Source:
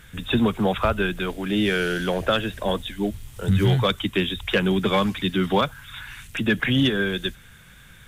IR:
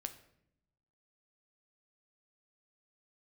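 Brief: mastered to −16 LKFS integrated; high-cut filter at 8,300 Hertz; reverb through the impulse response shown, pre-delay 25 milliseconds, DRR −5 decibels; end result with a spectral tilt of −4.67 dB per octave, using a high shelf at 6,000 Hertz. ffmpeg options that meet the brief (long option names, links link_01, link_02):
-filter_complex "[0:a]lowpass=8300,highshelf=frequency=6000:gain=-7,asplit=2[link_01][link_02];[1:a]atrim=start_sample=2205,adelay=25[link_03];[link_02][link_03]afir=irnorm=-1:irlink=0,volume=7.5dB[link_04];[link_01][link_04]amix=inputs=2:normalize=0,volume=1dB"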